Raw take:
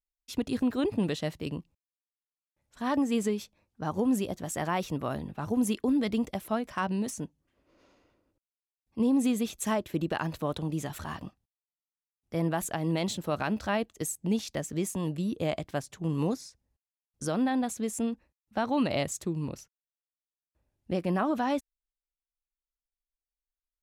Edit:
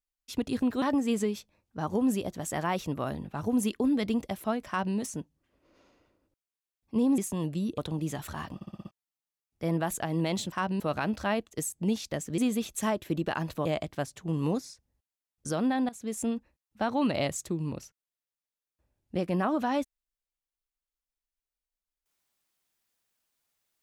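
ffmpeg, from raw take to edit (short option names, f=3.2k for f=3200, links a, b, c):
-filter_complex "[0:a]asplit=15[a][b][c][d][e][f][g][h][i][j][k][l][m][n][o];[a]atrim=end=0.822[p];[b]atrim=start=2.858:end=9.222[q];[c]atrim=start=14.808:end=15.412[r];[d]atrim=start=10.488:end=11.322[s];[e]atrim=start=11.258:end=11.322[t];[f]atrim=start=11.258:end=11.322[u];[g]atrim=start=11.258:end=11.322[v];[h]atrim=start=11.258:end=11.322[w];[i]atrim=start=11.258:end=11.322[x];[j]atrim=start=11.618:end=13.232[y];[k]atrim=start=6.718:end=7.002[z];[l]atrim=start=13.228:end=14.812[aa];[m]atrim=start=9.218:end=10.492[ab];[n]atrim=start=15.408:end=17.65,asetpts=PTS-STARTPTS,afade=t=out:st=2.238:d=0.004:c=hsin:silence=0.158489[ac];[o]atrim=start=17.65,asetpts=PTS-STARTPTS,afade=t=in:d=0.29:silence=0.158489[ad];[p][q]acrossfade=d=0.004:c1=hsin:c2=hsin[ae];[ae][r]acrossfade=d=0.004:c1=hsin:c2=hsin[af];[af][s]acrossfade=d=0.004:c1=hsin:c2=hsin[ag];[ag][t]acrossfade=d=0.004:c1=hsin:c2=hsin[ah];[ah][u]acrossfade=d=0.004:c1=hsin:c2=hsin[ai];[ai][v]acrossfade=d=0.004:c1=hsin:c2=hsin[aj];[aj][w]acrossfade=d=0.004:c1=hsin:c2=hsin[ak];[ak][x]acrossfade=d=0.004:c1=hsin:c2=hsin[al];[al][y]acrossfade=d=0.004:c1=hsin:c2=hsin[am];[am][z]acrossfade=d=0.004:c1=hsin:c2=hsin[an];[an][aa]acrossfade=d=0.004:c1=hsin:c2=hsin[ao];[ao][ab]acrossfade=d=0.004:c1=hsin:c2=hsin[ap];[ac][ad]concat=n=2:v=0:a=1[aq];[ap][aq]acrossfade=d=0.004:c1=hsin:c2=hsin"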